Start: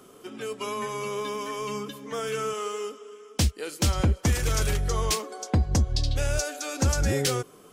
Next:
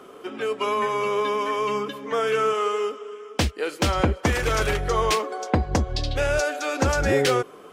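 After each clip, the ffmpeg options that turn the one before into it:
ffmpeg -i in.wav -af "bass=frequency=250:gain=-11,treble=frequency=4000:gain=-14,volume=9dB" out.wav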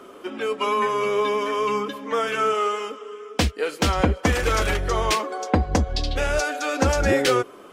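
ffmpeg -i in.wav -af "flanger=delay=3.2:depth=1.3:regen=-53:speed=0.4:shape=triangular,volume=5.5dB" out.wav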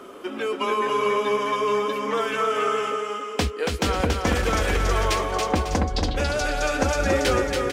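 ffmpeg -i in.wav -filter_complex "[0:a]acompressor=threshold=-31dB:ratio=1.5,asplit=2[link_01][link_02];[link_02]aecho=0:1:280|448|548.8|609.3|645.6:0.631|0.398|0.251|0.158|0.1[link_03];[link_01][link_03]amix=inputs=2:normalize=0,volume=2dB" out.wav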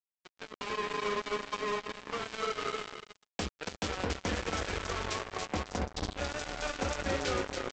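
ffmpeg -i in.wav -af "flanger=delay=9.8:depth=1.9:regen=-57:speed=1.8:shape=triangular,aresample=16000,acrusher=bits=3:mix=0:aa=0.5,aresample=44100,volume=-7.5dB" out.wav

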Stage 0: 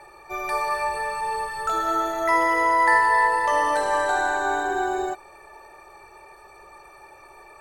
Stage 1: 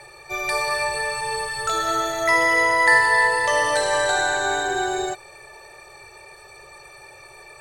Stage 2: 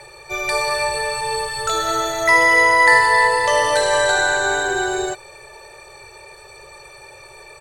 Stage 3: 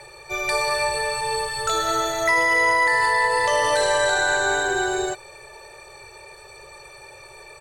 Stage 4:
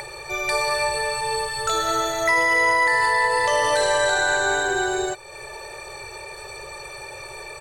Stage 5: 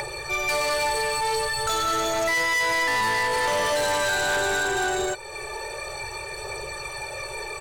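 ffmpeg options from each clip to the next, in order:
ffmpeg -i in.wav -af "equalizer=frequency=125:width_type=o:width=1:gain=12,equalizer=frequency=250:width_type=o:width=1:gain=-8,equalizer=frequency=500:width_type=o:width=1:gain=6,equalizer=frequency=1000:width_type=o:width=1:gain=-5,equalizer=frequency=2000:width_type=o:width=1:gain=5,equalizer=frequency=4000:width_type=o:width=1:gain=9,equalizer=frequency=8000:width_type=o:width=1:gain=9" out.wav
ffmpeg -i in.wav -af "aecho=1:1:2:0.33,volume=3dB" out.wav
ffmpeg -i in.wav -af "alimiter=limit=-9dB:level=0:latency=1:release=40,volume=-2dB" out.wav
ffmpeg -i in.wav -af "acompressor=mode=upward:threshold=-28dB:ratio=2.5" out.wav
ffmpeg -i in.wav -af "aphaser=in_gain=1:out_gain=1:delay=2.7:decay=0.3:speed=0.46:type=triangular,asoftclip=type=tanh:threshold=-24dB,volume=3dB" out.wav

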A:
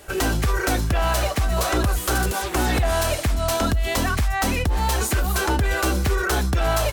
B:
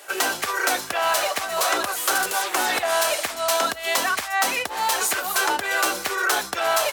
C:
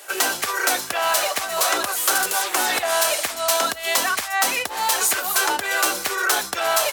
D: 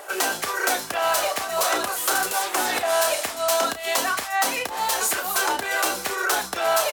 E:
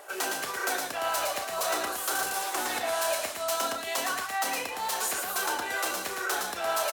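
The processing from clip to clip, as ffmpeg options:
ffmpeg -i in.wav -af "highpass=650,volume=3.5dB" out.wav
ffmpeg -i in.wav -af "highshelf=frequency=4300:gain=5" out.wav
ffmpeg -i in.wav -filter_complex "[0:a]acrossover=split=370|1200[link_01][link_02][link_03];[link_02]acompressor=mode=upward:threshold=-35dB:ratio=2.5[link_04];[link_03]flanger=delay=3:depth=4.9:regen=59:speed=1.9:shape=triangular[link_05];[link_01][link_04][link_05]amix=inputs=3:normalize=0,asplit=2[link_06][link_07];[link_07]adelay=32,volume=-10dB[link_08];[link_06][link_08]amix=inputs=2:normalize=0" out.wav
ffmpeg -i in.wav -af "aecho=1:1:113:0.631,volume=-8dB" out.wav

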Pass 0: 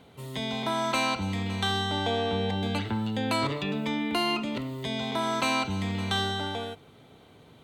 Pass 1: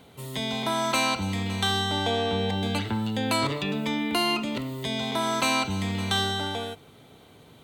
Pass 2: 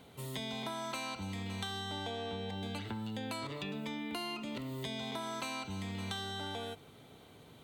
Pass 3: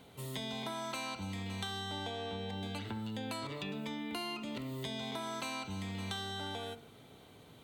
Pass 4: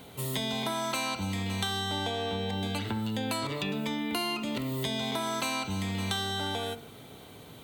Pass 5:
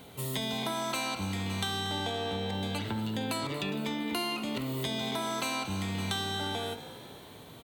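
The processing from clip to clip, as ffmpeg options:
ffmpeg -i in.wav -af "highshelf=frequency=6300:gain=8.5,volume=1.5dB" out.wav
ffmpeg -i in.wav -af "acompressor=threshold=-32dB:ratio=10,volume=-4.5dB" out.wav
ffmpeg -i in.wav -af "bandreject=frequency=76.5:width_type=h:width=4,bandreject=frequency=153:width_type=h:width=4,bandreject=frequency=229.5:width_type=h:width=4,bandreject=frequency=306:width_type=h:width=4,bandreject=frequency=382.5:width_type=h:width=4,bandreject=frequency=459:width_type=h:width=4,bandreject=frequency=535.5:width_type=h:width=4,bandreject=frequency=612:width_type=h:width=4,bandreject=frequency=688.5:width_type=h:width=4,bandreject=frequency=765:width_type=h:width=4,bandreject=frequency=841.5:width_type=h:width=4,bandreject=frequency=918:width_type=h:width=4,bandreject=frequency=994.5:width_type=h:width=4,bandreject=frequency=1071:width_type=h:width=4,bandreject=frequency=1147.5:width_type=h:width=4,bandreject=frequency=1224:width_type=h:width=4,bandreject=frequency=1300.5:width_type=h:width=4,bandreject=frequency=1377:width_type=h:width=4,bandreject=frequency=1453.5:width_type=h:width=4,bandreject=frequency=1530:width_type=h:width=4,bandreject=frequency=1606.5:width_type=h:width=4,bandreject=frequency=1683:width_type=h:width=4,bandreject=frequency=1759.5:width_type=h:width=4,bandreject=frequency=1836:width_type=h:width=4,bandreject=frequency=1912.5:width_type=h:width=4,bandreject=frequency=1989:width_type=h:width=4,bandreject=frequency=2065.5:width_type=h:width=4,bandreject=frequency=2142:width_type=h:width=4,bandreject=frequency=2218.5:width_type=h:width=4,bandreject=frequency=2295:width_type=h:width=4,bandreject=frequency=2371.5:width_type=h:width=4,bandreject=frequency=2448:width_type=h:width=4" out.wav
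ffmpeg -i in.wav -af "highshelf=frequency=11000:gain=8.5,volume=8dB" out.wav
ffmpeg -i in.wav -filter_complex "[0:a]asplit=7[link_01][link_02][link_03][link_04][link_05][link_06][link_07];[link_02]adelay=231,afreqshift=58,volume=-15dB[link_08];[link_03]adelay=462,afreqshift=116,volume=-19.3dB[link_09];[link_04]adelay=693,afreqshift=174,volume=-23.6dB[link_10];[link_05]adelay=924,afreqshift=232,volume=-27.9dB[link_11];[link_06]adelay=1155,afreqshift=290,volume=-32.2dB[link_12];[link_07]adelay=1386,afreqshift=348,volume=-36.5dB[link_13];[link_01][link_08][link_09][link_10][link_11][link_12][link_13]amix=inputs=7:normalize=0,volume=-1.5dB" out.wav

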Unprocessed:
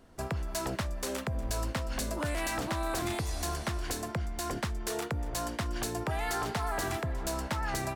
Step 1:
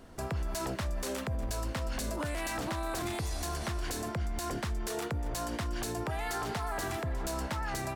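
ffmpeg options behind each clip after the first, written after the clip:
ffmpeg -i in.wav -af "alimiter=level_in=8.5dB:limit=-24dB:level=0:latency=1:release=72,volume=-8.5dB,volume=5.5dB" out.wav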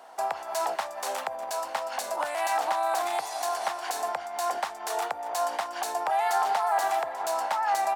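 ffmpeg -i in.wav -af "highpass=frequency=780:width_type=q:width=4.9,volume=3dB" out.wav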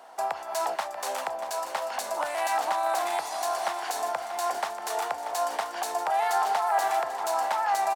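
ffmpeg -i in.wav -af "aecho=1:1:636|1272|1908|2544|3180|3816:0.282|0.152|0.0822|0.0444|0.024|0.0129" out.wav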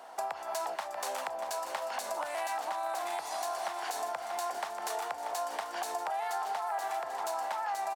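ffmpeg -i in.wav -af "acompressor=threshold=-33dB:ratio=4" out.wav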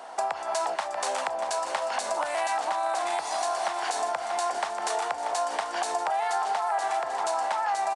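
ffmpeg -i in.wav -af "aresample=22050,aresample=44100,volume=7dB" out.wav

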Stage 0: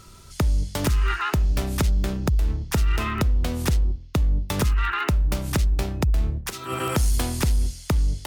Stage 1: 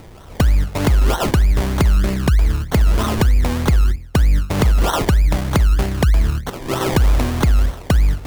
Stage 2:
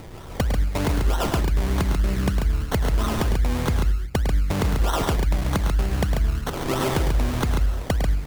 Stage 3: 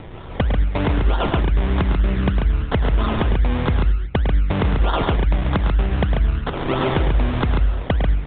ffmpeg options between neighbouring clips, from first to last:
ffmpeg -i in.wav -filter_complex "[0:a]acrossover=split=2400[link_01][link_02];[link_02]alimiter=limit=-23dB:level=0:latency=1:release=163[link_03];[link_01][link_03]amix=inputs=2:normalize=0,acrusher=samples=26:mix=1:aa=0.000001:lfo=1:lforange=15.6:lforate=3.2,volume=7dB" out.wav
ffmpeg -i in.wav -filter_complex "[0:a]acompressor=threshold=-21dB:ratio=6,asplit=2[link_01][link_02];[link_02]aecho=0:1:105|139.9:0.398|0.562[link_03];[link_01][link_03]amix=inputs=2:normalize=0" out.wav
ffmpeg -i in.wav -af "aresample=8000,aresample=44100,volume=3.5dB" out.wav

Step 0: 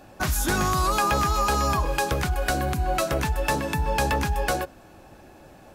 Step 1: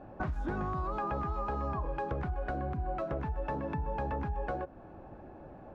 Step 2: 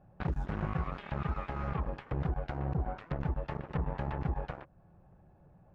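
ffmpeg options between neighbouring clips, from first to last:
ffmpeg -i in.wav -af "lowpass=1100,acompressor=threshold=-33dB:ratio=4" out.wav
ffmpeg -i in.wav -af "lowshelf=frequency=210:width_type=q:width=3:gain=7,aeval=exprs='0.15*(cos(1*acos(clip(val(0)/0.15,-1,1)))-cos(1*PI/2))+0.0473*(cos(5*acos(clip(val(0)/0.15,-1,1)))-cos(5*PI/2))+0.0668*(cos(7*acos(clip(val(0)/0.15,-1,1)))-cos(7*PI/2))':channel_layout=same,volume=-8.5dB" out.wav

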